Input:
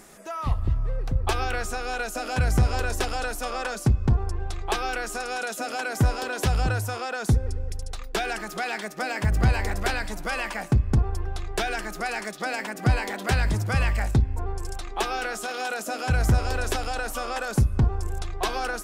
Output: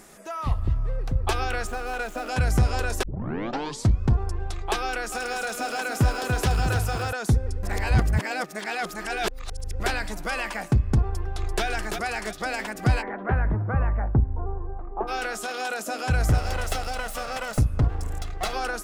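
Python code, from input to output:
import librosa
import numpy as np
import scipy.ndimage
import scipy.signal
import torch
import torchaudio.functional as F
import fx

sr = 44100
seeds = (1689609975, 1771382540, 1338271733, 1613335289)

y = fx.median_filter(x, sr, points=9, at=(1.67, 2.29))
y = fx.echo_crushed(y, sr, ms=290, feedback_pct=35, bits=8, wet_db=-6, at=(4.83, 7.13))
y = fx.echo_throw(y, sr, start_s=11.04, length_s=0.6, ms=340, feedback_pct=45, wet_db=-5.5)
y = fx.lowpass(y, sr, hz=fx.line((13.01, 1800.0), (15.07, 1000.0)), slope=24, at=(13.01, 15.07), fade=0.02)
y = fx.lower_of_two(y, sr, delay_ms=1.5, at=(16.29, 18.53))
y = fx.edit(y, sr, fx.tape_start(start_s=3.03, length_s=0.98),
    fx.reverse_span(start_s=7.63, length_s=2.17), tone=tone)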